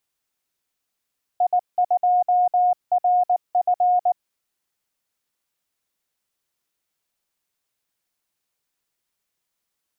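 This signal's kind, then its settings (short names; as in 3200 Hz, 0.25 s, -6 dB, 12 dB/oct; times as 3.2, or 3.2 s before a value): Morse "I2RF" 19 wpm 721 Hz -14.5 dBFS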